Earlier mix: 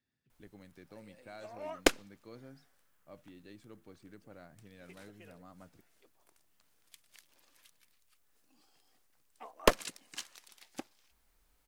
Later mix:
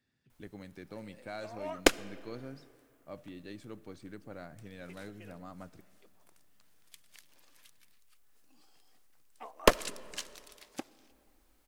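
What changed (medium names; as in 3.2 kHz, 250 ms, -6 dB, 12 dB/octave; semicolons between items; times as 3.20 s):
speech +5.0 dB; reverb: on, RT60 2.7 s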